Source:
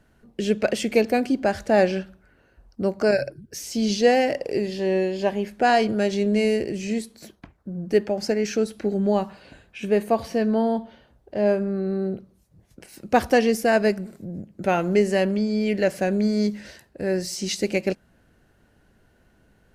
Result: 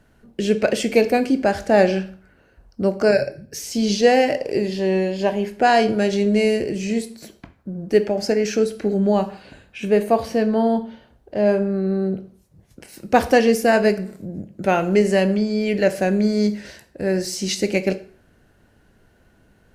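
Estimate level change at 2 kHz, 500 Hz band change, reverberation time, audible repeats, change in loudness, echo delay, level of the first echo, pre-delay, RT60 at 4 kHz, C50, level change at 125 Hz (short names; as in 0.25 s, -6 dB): +3.0 dB, +3.5 dB, 0.45 s, none, +3.5 dB, none, none, 16 ms, 0.40 s, 15.5 dB, +4.0 dB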